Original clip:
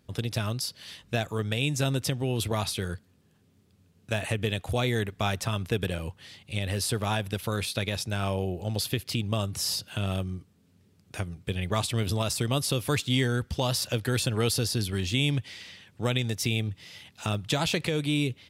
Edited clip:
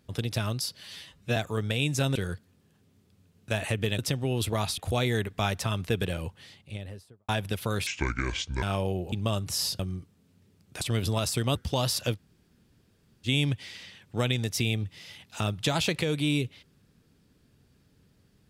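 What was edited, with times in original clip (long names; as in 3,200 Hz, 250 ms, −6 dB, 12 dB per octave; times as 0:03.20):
0:00.81–0:01.18: time-stretch 1.5×
0:01.97–0:02.76: move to 0:04.59
0:06.05–0:07.10: fade out and dull
0:07.68–0:08.15: play speed 62%
0:08.65–0:09.19: remove
0:09.86–0:10.18: remove
0:11.20–0:11.85: remove
0:12.59–0:13.41: remove
0:14.02–0:15.12: fill with room tone, crossfade 0.06 s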